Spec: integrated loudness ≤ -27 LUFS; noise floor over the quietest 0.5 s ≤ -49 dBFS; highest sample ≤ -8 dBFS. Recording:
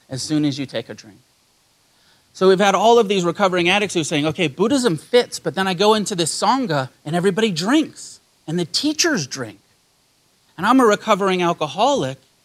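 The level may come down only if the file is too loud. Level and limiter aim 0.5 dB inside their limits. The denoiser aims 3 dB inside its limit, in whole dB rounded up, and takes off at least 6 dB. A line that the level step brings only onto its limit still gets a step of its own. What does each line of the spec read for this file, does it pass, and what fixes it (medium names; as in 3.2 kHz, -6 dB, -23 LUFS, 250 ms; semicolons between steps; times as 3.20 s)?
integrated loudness -18.0 LUFS: fail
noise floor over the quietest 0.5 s -60 dBFS: pass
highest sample -2.5 dBFS: fail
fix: trim -9.5 dB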